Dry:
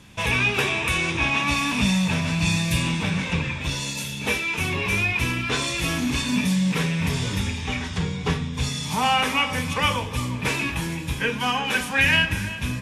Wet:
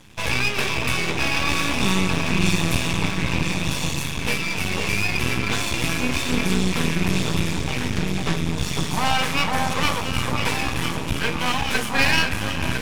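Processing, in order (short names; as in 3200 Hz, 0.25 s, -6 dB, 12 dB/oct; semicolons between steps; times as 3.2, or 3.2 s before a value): echo with dull and thin repeats by turns 0.502 s, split 1200 Hz, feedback 65%, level -2 dB; half-wave rectifier; gain +3.5 dB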